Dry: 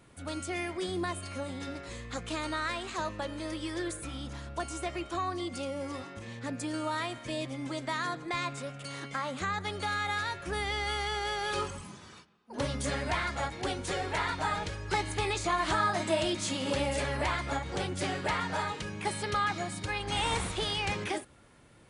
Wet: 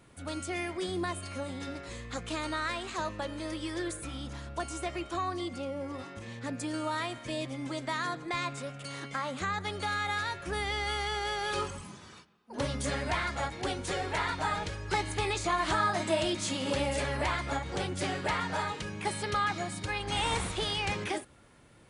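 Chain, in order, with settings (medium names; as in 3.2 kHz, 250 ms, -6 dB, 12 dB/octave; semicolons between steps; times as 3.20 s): 5.52–5.98 s: treble shelf 3.9 kHz -> 2.3 kHz -11 dB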